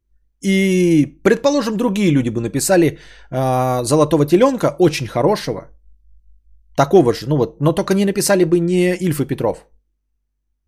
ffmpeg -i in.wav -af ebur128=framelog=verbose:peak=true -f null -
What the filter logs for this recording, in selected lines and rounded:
Integrated loudness:
  I:         -16.3 LUFS
  Threshold: -27.0 LUFS
Loudness range:
  LRA:         2.0 LU
  Threshold: -37.0 LUFS
  LRA low:   -18.2 LUFS
  LRA high:  -16.2 LUFS
True peak:
  Peak:       -1.4 dBFS